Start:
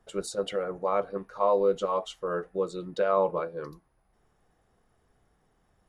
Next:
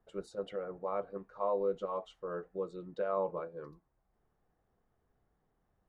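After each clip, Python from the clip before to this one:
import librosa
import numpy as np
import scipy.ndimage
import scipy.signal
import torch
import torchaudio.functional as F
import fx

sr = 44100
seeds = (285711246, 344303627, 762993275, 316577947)

y = fx.lowpass(x, sr, hz=1500.0, slope=6)
y = y * 10.0 ** (-8.0 / 20.0)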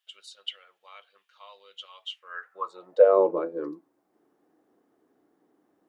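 y = fx.filter_sweep_highpass(x, sr, from_hz=3100.0, to_hz=300.0, start_s=2.09, end_s=3.31, q=5.8)
y = y * 10.0 ** (7.0 / 20.0)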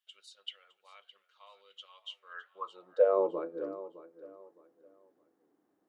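y = fx.echo_feedback(x, sr, ms=612, feedback_pct=28, wet_db=-15.5)
y = y * 10.0 ** (-7.5 / 20.0)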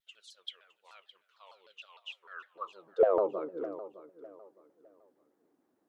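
y = fx.vibrato_shape(x, sr, shape='saw_down', rate_hz=6.6, depth_cents=250.0)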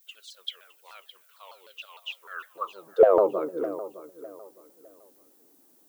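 y = fx.dmg_noise_colour(x, sr, seeds[0], colour='violet', level_db=-69.0)
y = y * 10.0 ** (7.5 / 20.0)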